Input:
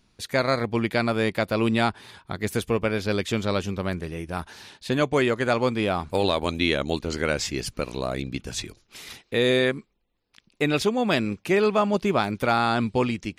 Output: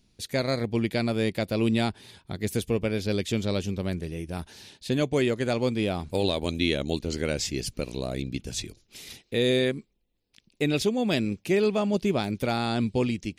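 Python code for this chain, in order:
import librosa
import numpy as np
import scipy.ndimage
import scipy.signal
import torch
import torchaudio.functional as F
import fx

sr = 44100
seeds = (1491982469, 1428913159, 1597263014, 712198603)

y = fx.peak_eq(x, sr, hz=1200.0, db=-12.0, octaves=1.5)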